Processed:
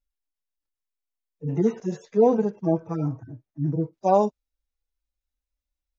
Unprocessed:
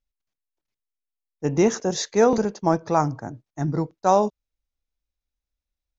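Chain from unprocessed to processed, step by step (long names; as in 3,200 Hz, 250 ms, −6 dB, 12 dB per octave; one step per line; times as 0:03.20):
harmonic-percussive split with one part muted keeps harmonic
0:01.56–0:03.93: high-shelf EQ 3,800 Hz −10.5 dB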